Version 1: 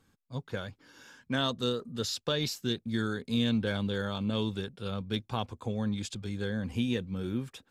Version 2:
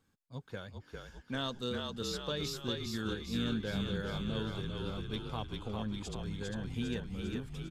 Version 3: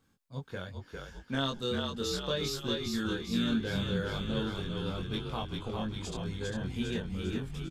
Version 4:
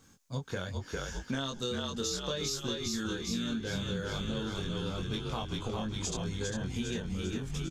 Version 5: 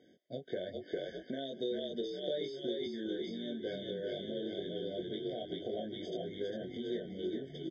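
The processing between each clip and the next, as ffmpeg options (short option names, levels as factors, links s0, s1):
-filter_complex "[0:a]asplit=9[s0][s1][s2][s3][s4][s5][s6][s7][s8];[s1]adelay=401,afreqshift=-42,volume=0.668[s9];[s2]adelay=802,afreqshift=-84,volume=0.394[s10];[s3]adelay=1203,afreqshift=-126,volume=0.232[s11];[s4]adelay=1604,afreqshift=-168,volume=0.138[s12];[s5]adelay=2005,afreqshift=-210,volume=0.0813[s13];[s6]adelay=2406,afreqshift=-252,volume=0.0479[s14];[s7]adelay=2807,afreqshift=-294,volume=0.0282[s15];[s8]adelay=3208,afreqshift=-336,volume=0.0166[s16];[s0][s9][s10][s11][s12][s13][s14][s15][s16]amix=inputs=9:normalize=0,volume=0.447"
-filter_complex "[0:a]asplit=2[s0][s1];[s1]adelay=22,volume=0.708[s2];[s0][s2]amix=inputs=2:normalize=0,volume=1.26"
-af "equalizer=f=6400:w=2.1:g=11,acompressor=threshold=0.00891:ratio=6,volume=2.82"
-af "acompressor=threshold=0.0158:ratio=6,highpass=290,equalizer=f=360:t=q:w=4:g=8,equalizer=f=610:t=q:w=4:g=7,equalizer=f=910:t=q:w=4:g=-6,equalizer=f=1600:t=q:w=4:g=-10,equalizer=f=2500:t=q:w=4:g=-5,lowpass=f=3400:w=0.5412,lowpass=f=3400:w=1.3066,afftfilt=real='re*eq(mod(floor(b*sr/1024/750),2),0)':imag='im*eq(mod(floor(b*sr/1024/750),2),0)':win_size=1024:overlap=0.75,volume=1.41"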